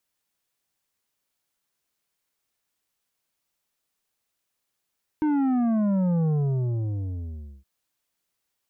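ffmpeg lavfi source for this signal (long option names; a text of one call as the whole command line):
ffmpeg -f lavfi -i "aevalsrc='0.0891*clip((2.42-t)/1.37,0,1)*tanh(2.66*sin(2*PI*310*2.42/log(65/310)*(exp(log(65/310)*t/2.42)-1)))/tanh(2.66)':duration=2.42:sample_rate=44100" out.wav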